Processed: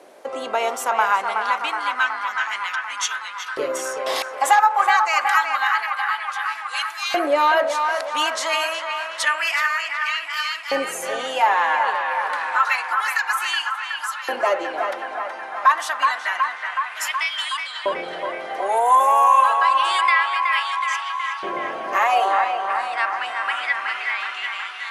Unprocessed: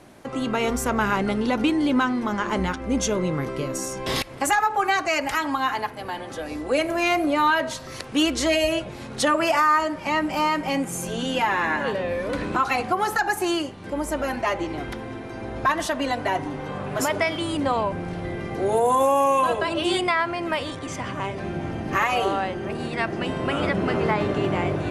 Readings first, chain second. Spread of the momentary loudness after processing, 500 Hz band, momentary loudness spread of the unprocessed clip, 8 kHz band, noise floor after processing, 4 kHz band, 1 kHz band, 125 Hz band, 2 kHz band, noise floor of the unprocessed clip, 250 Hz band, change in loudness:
10 LU, -2.0 dB, 10 LU, +0.5 dB, -33 dBFS, +3.5 dB, +5.5 dB, under -25 dB, +5.5 dB, -37 dBFS, -15.0 dB, +3.0 dB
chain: LFO high-pass saw up 0.28 Hz 470–4000 Hz; band-passed feedback delay 371 ms, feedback 78%, band-pass 1.3 kHz, level -4 dB

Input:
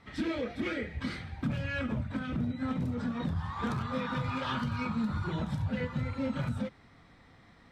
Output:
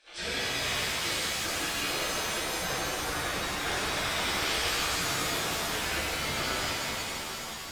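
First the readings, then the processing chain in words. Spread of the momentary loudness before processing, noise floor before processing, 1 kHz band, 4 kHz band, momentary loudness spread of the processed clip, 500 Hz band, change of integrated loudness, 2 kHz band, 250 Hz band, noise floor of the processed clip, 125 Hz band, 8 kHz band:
3 LU, -59 dBFS, +6.0 dB, +16.5 dB, 4 LU, +3.5 dB, +4.5 dB, +9.5 dB, -7.5 dB, -38 dBFS, -8.0 dB, no reading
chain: spectral gate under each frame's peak -15 dB weak; band-stop 1 kHz, Q 7.8; resampled via 22.05 kHz; reverb removal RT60 1.8 s; treble shelf 4.3 kHz +7 dB; pitch-shifted reverb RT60 3.7 s, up +7 st, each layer -2 dB, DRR -11 dB; trim +1.5 dB

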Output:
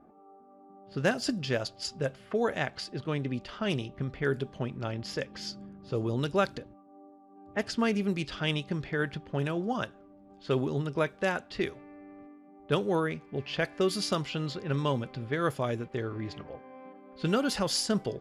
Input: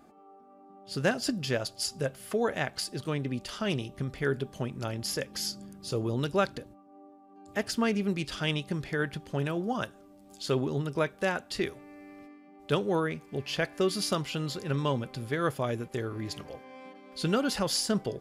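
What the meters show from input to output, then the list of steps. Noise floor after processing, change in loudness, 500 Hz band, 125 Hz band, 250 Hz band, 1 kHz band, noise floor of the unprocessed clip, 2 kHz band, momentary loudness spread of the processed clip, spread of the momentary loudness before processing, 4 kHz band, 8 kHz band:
-56 dBFS, 0.0 dB, 0.0 dB, 0.0 dB, 0.0 dB, 0.0 dB, -55 dBFS, 0.0 dB, 12 LU, 11 LU, -1.5 dB, -3.5 dB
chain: level-controlled noise filter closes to 1.1 kHz, open at -24 dBFS

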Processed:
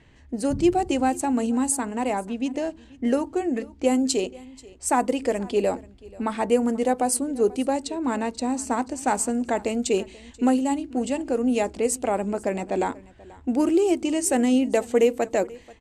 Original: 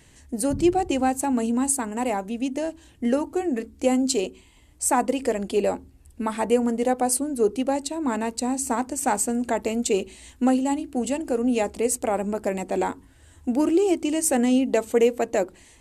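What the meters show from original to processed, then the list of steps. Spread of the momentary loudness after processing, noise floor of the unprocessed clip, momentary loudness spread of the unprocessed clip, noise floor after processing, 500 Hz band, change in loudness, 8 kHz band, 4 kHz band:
7 LU, -54 dBFS, 7 LU, -50 dBFS, 0.0 dB, 0.0 dB, -2.0 dB, 0.0 dB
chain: level-controlled noise filter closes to 2.9 kHz, open at -16.5 dBFS; on a send: delay 485 ms -22 dB

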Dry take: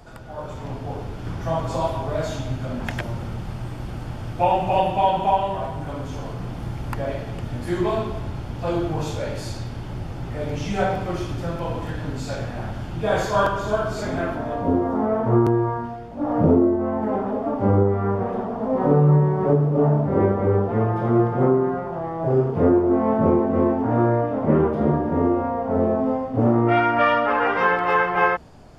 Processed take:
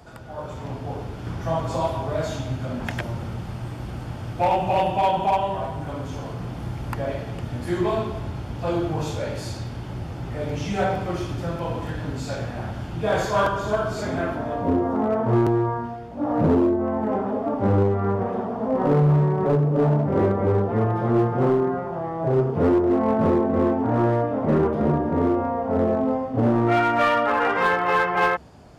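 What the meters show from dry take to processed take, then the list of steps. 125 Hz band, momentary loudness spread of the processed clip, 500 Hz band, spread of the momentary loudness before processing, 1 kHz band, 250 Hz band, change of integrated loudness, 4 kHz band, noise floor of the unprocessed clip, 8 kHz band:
-1.0 dB, 13 LU, -1.0 dB, 13 LU, -1.0 dB, -1.0 dB, -1.5 dB, 0.0 dB, -33 dBFS, no reading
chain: high-pass 45 Hz 24 dB/octave; in parallel at -4.5 dB: wavefolder -14.5 dBFS; on the sum: trim -4.5 dB

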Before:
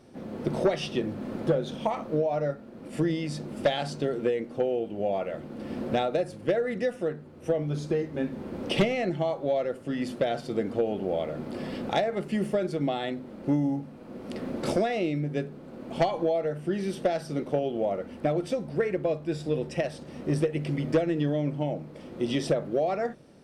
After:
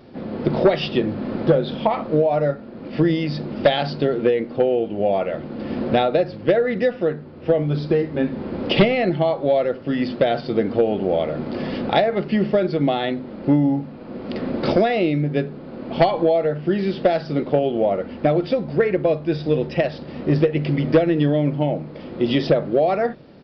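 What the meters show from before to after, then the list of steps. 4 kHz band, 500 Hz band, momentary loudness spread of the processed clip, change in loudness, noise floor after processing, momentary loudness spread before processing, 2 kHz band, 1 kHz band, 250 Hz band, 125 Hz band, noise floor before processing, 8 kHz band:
+8.5 dB, +8.5 dB, 8 LU, +8.5 dB, -37 dBFS, 8 LU, +8.5 dB, +8.5 dB, +8.5 dB, +8.5 dB, -46 dBFS, under -10 dB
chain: resampled via 11.025 kHz; trim +8.5 dB

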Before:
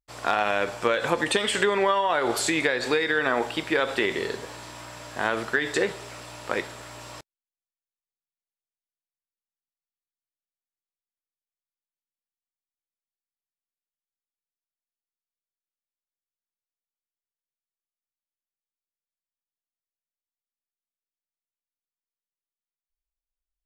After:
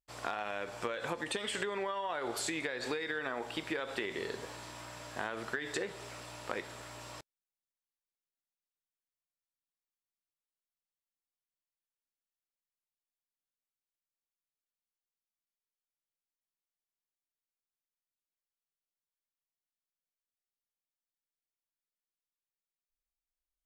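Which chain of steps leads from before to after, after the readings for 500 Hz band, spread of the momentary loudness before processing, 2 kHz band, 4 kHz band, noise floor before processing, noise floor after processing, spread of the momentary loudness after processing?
-13.0 dB, 18 LU, -12.5 dB, -11.5 dB, under -85 dBFS, under -85 dBFS, 11 LU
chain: compression, threshold -27 dBFS, peak gain reduction 10 dB; trim -6 dB

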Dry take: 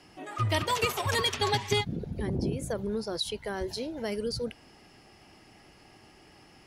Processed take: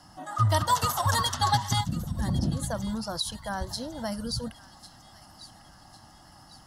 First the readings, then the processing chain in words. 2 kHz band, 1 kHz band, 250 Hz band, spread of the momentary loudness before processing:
-2.0 dB, +6.0 dB, +2.0 dB, 8 LU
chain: static phaser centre 1 kHz, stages 4; on a send: feedback echo behind a high-pass 1101 ms, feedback 47%, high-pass 1.7 kHz, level -15.5 dB; on the sum: endings held to a fixed fall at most 310 dB/s; trim +6.5 dB

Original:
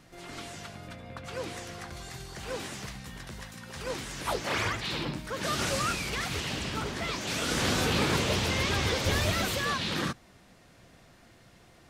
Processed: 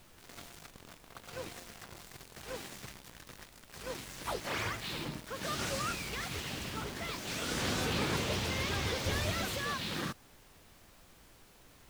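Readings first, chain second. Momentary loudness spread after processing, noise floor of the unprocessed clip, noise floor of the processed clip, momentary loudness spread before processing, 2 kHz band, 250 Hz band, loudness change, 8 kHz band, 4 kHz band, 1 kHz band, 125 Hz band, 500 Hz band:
18 LU, -57 dBFS, -60 dBFS, 16 LU, -6.0 dB, -6.5 dB, -5.5 dB, -5.5 dB, -6.0 dB, -6.0 dB, -6.5 dB, -6.5 dB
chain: small samples zeroed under -37 dBFS; added noise pink -53 dBFS; trim -6 dB

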